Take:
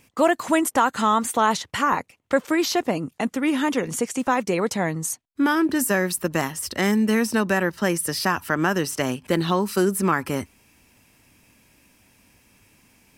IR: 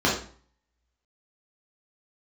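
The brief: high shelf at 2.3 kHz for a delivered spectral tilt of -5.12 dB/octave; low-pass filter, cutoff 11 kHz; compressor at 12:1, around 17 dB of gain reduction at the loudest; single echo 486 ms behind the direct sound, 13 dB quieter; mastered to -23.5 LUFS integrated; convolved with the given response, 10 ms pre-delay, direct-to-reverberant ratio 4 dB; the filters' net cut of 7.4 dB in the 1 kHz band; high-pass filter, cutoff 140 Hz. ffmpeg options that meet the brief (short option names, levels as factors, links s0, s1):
-filter_complex "[0:a]highpass=140,lowpass=11000,equalizer=f=1000:t=o:g=-8,highshelf=f=2300:g=-7.5,acompressor=threshold=0.0178:ratio=12,aecho=1:1:486:0.224,asplit=2[s0][s1];[1:a]atrim=start_sample=2205,adelay=10[s2];[s1][s2]afir=irnorm=-1:irlink=0,volume=0.0944[s3];[s0][s3]amix=inputs=2:normalize=0,volume=4.47"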